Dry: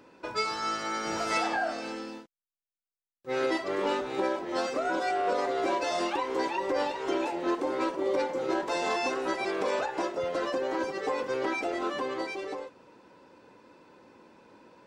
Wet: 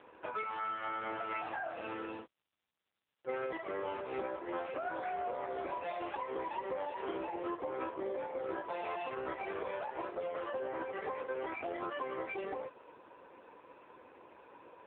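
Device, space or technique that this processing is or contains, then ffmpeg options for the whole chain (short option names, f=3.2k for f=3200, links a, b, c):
voicemail: -af "highpass=390,lowpass=3.2k,acompressor=threshold=-38dB:ratio=8,volume=4dB" -ar 8000 -c:a libopencore_amrnb -b:a 5900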